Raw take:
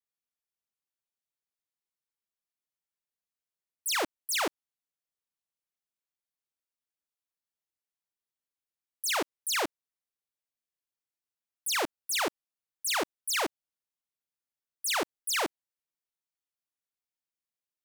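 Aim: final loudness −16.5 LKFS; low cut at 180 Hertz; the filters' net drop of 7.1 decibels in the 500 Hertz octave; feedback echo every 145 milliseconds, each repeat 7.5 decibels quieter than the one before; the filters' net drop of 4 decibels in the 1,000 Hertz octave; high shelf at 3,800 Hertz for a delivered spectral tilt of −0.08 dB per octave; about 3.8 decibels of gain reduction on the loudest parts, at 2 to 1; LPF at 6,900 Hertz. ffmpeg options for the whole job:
ffmpeg -i in.wav -af "highpass=180,lowpass=6900,equalizer=frequency=500:width_type=o:gain=-8.5,equalizer=frequency=1000:width_type=o:gain=-3.5,highshelf=frequency=3800:gain=8.5,acompressor=threshold=-30dB:ratio=2,aecho=1:1:145|290|435|580|725:0.422|0.177|0.0744|0.0312|0.0131,volume=15.5dB" out.wav

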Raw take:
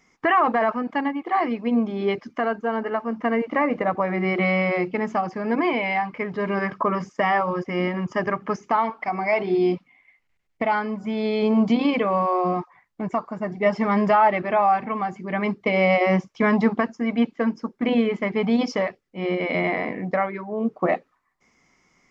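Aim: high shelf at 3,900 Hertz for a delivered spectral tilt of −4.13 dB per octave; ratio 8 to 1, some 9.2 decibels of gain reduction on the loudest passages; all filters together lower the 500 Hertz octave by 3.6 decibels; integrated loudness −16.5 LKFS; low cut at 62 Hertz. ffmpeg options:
ffmpeg -i in.wav -af "highpass=62,equalizer=frequency=500:width_type=o:gain=-5,highshelf=frequency=3900:gain=8,acompressor=threshold=-25dB:ratio=8,volume=13.5dB" out.wav

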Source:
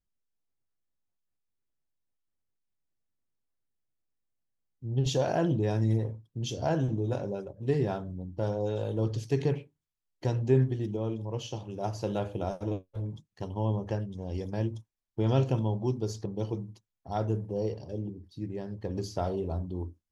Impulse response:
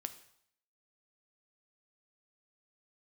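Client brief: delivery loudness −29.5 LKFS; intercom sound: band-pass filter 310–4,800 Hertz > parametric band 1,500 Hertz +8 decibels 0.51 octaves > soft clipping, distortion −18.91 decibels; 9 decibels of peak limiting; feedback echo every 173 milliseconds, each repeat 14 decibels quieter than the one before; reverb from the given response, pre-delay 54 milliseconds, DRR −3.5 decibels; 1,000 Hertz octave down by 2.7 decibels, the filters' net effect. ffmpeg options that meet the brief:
-filter_complex "[0:a]equalizer=frequency=1000:width_type=o:gain=-5.5,alimiter=limit=-22dB:level=0:latency=1,aecho=1:1:173|346:0.2|0.0399,asplit=2[link_01][link_02];[1:a]atrim=start_sample=2205,adelay=54[link_03];[link_02][link_03]afir=irnorm=-1:irlink=0,volume=6dB[link_04];[link_01][link_04]amix=inputs=2:normalize=0,highpass=310,lowpass=4800,equalizer=frequency=1500:width_type=o:width=0.51:gain=8,asoftclip=threshold=-21.5dB,volume=4.5dB"

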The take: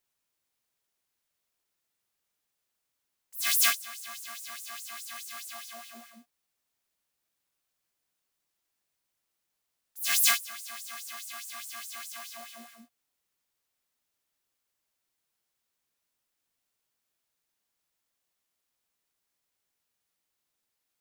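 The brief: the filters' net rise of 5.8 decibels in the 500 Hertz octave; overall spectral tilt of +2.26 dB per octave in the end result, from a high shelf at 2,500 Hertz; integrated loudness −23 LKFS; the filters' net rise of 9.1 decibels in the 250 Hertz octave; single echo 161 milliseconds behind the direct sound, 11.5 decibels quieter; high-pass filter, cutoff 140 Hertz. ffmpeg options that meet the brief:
ffmpeg -i in.wav -af "highpass=140,equalizer=frequency=250:width_type=o:gain=8.5,equalizer=frequency=500:width_type=o:gain=9,highshelf=frequency=2500:gain=3.5,aecho=1:1:161:0.266,volume=3.5dB" out.wav

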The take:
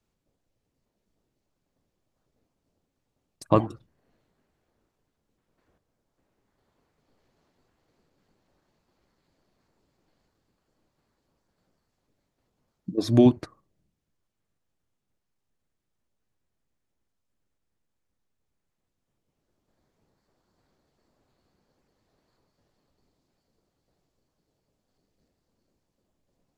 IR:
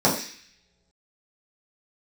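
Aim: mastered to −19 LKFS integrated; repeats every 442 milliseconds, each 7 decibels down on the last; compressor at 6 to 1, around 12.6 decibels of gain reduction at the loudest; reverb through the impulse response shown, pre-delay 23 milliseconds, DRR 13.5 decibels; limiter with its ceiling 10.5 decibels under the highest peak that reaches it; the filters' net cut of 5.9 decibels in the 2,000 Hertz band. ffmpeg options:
-filter_complex "[0:a]equalizer=frequency=2000:width_type=o:gain=-8.5,acompressor=threshold=-26dB:ratio=6,alimiter=limit=-22dB:level=0:latency=1,aecho=1:1:442|884|1326|1768|2210:0.447|0.201|0.0905|0.0407|0.0183,asplit=2[link_01][link_02];[1:a]atrim=start_sample=2205,adelay=23[link_03];[link_02][link_03]afir=irnorm=-1:irlink=0,volume=-31.5dB[link_04];[link_01][link_04]amix=inputs=2:normalize=0,volume=19.5dB"

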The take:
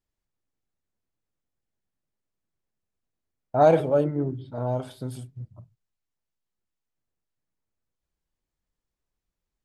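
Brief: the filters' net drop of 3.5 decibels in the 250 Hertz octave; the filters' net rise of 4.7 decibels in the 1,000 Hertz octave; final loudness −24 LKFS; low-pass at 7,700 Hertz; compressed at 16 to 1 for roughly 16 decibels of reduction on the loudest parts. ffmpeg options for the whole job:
ffmpeg -i in.wav -af "lowpass=7700,equalizer=frequency=250:width_type=o:gain=-5.5,equalizer=frequency=1000:width_type=o:gain=8,acompressor=threshold=-25dB:ratio=16,volume=8.5dB" out.wav

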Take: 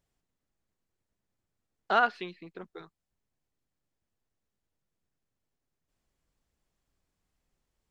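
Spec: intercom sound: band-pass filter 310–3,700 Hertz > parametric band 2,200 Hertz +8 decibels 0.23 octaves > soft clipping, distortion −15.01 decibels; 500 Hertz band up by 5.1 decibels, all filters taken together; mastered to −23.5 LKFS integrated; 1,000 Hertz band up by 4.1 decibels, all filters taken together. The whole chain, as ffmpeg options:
ffmpeg -i in.wav -af "highpass=310,lowpass=3700,equalizer=frequency=500:width_type=o:gain=6.5,equalizer=frequency=1000:width_type=o:gain=3.5,equalizer=frequency=2200:width_type=o:width=0.23:gain=8,asoftclip=threshold=-13.5dB,volume=2.5dB" out.wav

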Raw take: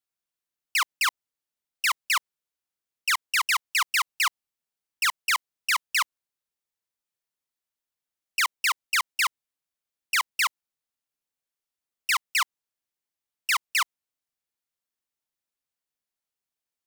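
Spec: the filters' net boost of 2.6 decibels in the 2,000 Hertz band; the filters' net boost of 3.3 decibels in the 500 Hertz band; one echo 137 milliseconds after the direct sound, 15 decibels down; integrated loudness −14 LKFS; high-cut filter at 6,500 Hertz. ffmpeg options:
ffmpeg -i in.wav -af "lowpass=6500,equalizer=frequency=500:width_type=o:gain=5,equalizer=frequency=2000:width_type=o:gain=3,aecho=1:1:137:0.178,volume=10.5dB" out.wav

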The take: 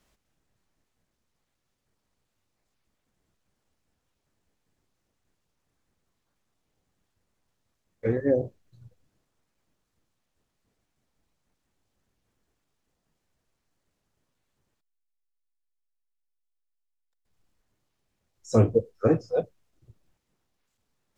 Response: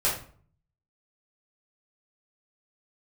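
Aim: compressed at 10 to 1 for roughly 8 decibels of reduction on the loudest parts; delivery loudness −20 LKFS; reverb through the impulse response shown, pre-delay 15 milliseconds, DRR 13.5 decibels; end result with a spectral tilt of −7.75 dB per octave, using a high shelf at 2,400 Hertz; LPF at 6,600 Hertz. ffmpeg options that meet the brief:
-filter_complex "[0:a]lowpass=6600,highshelf=frequency=2400:gain=-6,acompressor=threshold=-22dB:ratio=10,asplit=2[link_01][link_02];[1:a]atrim=start_sample=2205,adelay=15[link_03];[link_02][link_03]afir=irnorm=-1:irlink=0,volume=-24.5dB[link_04];[link_01][link_04]amix=inputs=2:normalize=0,volume=10.5dB"

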